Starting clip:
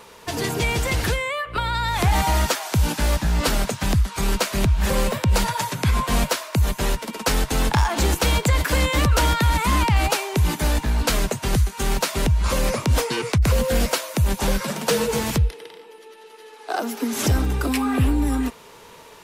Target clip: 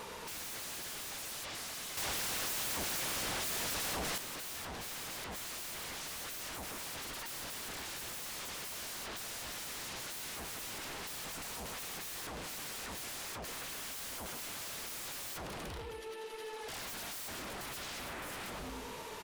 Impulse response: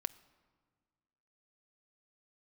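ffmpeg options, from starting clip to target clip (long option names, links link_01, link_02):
-filter_complex "[0:a]asplit=2[link_01][link_02];[link_02]adelay=108,lowpass=frequency=3600:poles=1,volume=-11.5dB,asplit=2[link_03][link_04];[link_04]adelay=108,lowpass=frequency=3600:poles=1,volume=0.45,asplit=2[link_05][link_06];[link_06]adelay=108,lowpass=frequency=3600:poles=1,volume=0.45,asplit=2[link_07][link_08];[link_08]adelay=108,lowpass=frequency=3600:poles=1,volume=0.45,asplit=2[link_09][link_10];[link_10]adelay=108,lowpass=frequency=3600:poles=1,volume=0.45[link_11];[link_01][link_03][link_05][link_07][link_09][link_11]amix=inputs=6:normalize=0,alimiter=limit=-20.5dB:level=0:latency=1:release=38,aeval=exprs='0.0119*(abs(mod(val(0)/0.0119+3,4)-2)-1)':channel_layout=same,asettb=1/sr,asplit=3[link_12][link_13][link_14];[link_12]atrim=end=1.974[link_15];[link_13]atrim=start=1.97:end=4.18,asetpts=PTS-STARTPTS,afade=type=in:duration=0.004:curve=qsin,afade=type=out:start_time=2.206:duration=0.004:curve=qsin,acontrast=62[link_16];[link_14]atrim=start=4.176[link_17];[link_15][link_16]acrossfade=duration=0.004:curve1=hsin:curve2=qsin[link_18];[link_18][link_17]acrossfade=duration=0.004:curve1=qsin:curve2=hsin"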